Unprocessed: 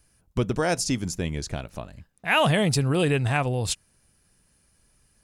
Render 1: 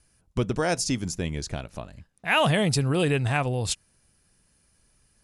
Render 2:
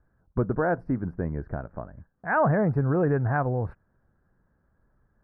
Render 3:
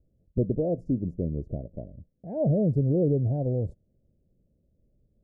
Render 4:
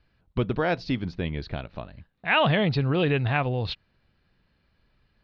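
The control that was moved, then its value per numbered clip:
elliptic low-pass filter, frequency: 11,000, 1,600, 590, 4,200 Hertz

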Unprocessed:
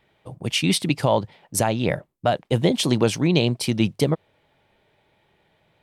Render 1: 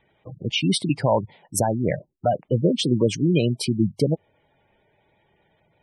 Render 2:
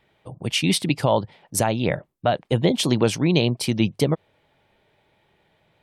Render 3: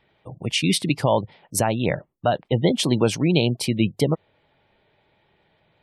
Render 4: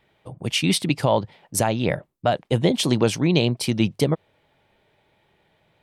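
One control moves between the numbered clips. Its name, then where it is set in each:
gate on every frequency bin, under each frame's peak: −15, −45, −30, −55 decibels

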